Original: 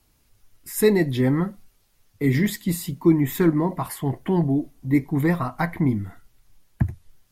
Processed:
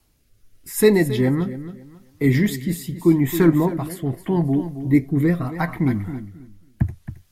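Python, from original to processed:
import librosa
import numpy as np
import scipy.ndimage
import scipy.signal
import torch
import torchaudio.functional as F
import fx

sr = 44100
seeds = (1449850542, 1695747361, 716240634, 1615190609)

y = fx.echo_feedback(x, sr, ms=271, feedback_pct=21, wet_db=-12.5)
y = fx.rotary(y, sr, hz=0.8)
y = y * 10.0 ** (3.5 / 20.0)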